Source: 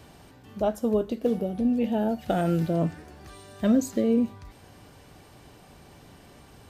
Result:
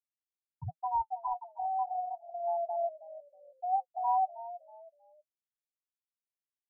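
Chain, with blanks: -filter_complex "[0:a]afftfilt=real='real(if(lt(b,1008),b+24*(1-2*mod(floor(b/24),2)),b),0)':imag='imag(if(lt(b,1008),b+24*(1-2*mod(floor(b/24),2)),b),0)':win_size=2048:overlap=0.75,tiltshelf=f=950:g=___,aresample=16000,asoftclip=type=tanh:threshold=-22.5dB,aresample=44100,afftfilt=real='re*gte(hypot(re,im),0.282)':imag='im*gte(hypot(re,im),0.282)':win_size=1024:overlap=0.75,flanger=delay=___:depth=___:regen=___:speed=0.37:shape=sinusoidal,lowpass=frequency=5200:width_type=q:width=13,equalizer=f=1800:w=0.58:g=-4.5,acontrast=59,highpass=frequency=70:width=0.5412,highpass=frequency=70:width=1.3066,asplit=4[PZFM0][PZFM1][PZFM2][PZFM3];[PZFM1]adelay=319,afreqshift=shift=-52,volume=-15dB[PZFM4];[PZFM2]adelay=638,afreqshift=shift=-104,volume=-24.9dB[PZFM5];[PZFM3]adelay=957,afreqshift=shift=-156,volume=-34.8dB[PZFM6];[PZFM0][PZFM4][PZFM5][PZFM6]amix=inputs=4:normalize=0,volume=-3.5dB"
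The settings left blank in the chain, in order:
-5, 2.7, 5.6, 43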